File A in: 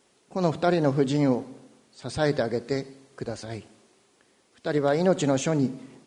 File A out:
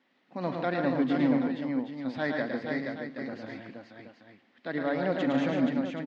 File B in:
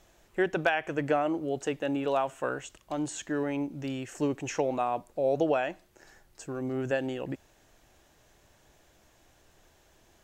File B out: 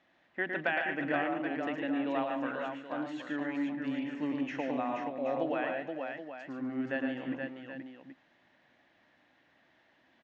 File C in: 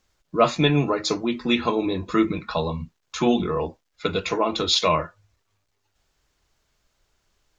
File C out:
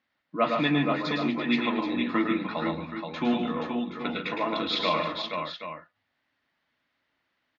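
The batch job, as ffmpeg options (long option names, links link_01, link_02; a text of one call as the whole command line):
ffmpeg -i in.wav -af "highpass=190,equalizer=frequency=260:width_type=q:width=4:gain=8,equalizer=frequency=410:width_type=q:width=4:gain=-10,equalizer=frequency=1900:width_type=q:width=4:gain=9,lowpass=frequency=3900:width=0.5412,lowpass=frequency=3900:width=1.3066,aecho=1:1:110|146|250|333|476|776:0.562|0.398|0.119|0.112|0.562|0.299,volume=-6.5dB" out.wav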